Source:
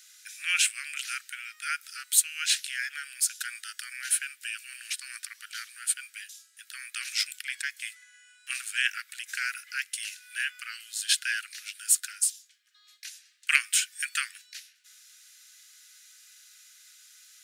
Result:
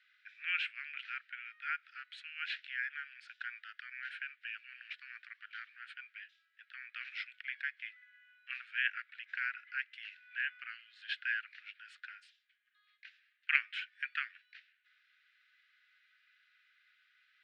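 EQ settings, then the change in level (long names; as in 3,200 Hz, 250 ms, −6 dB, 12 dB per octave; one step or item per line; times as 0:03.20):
high-pass filter 1,500 Hz 24 dB per octave
high-frequency loss of the air 430 metres
head-to-tape spacing loss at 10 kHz 34 dB
+6.5 dB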